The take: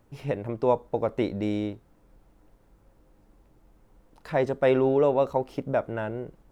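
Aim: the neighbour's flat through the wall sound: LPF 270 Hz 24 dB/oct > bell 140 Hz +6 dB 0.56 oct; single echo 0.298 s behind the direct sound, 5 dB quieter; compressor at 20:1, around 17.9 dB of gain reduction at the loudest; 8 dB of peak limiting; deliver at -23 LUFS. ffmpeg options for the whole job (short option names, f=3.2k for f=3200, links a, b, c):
-af "acompressor=threshold=-35dB:ratio=20,alimiter=level_in=9dB:limit=-24dB:level=0:latency=1,volume=-9dB,lowpass=f=270:w=0.5412,lowpass=f=270:w=1.3066,equalizer=f=140:t=o:w=0.56:g=6,aecho=1:1:298:0.562,volume=22.5dB"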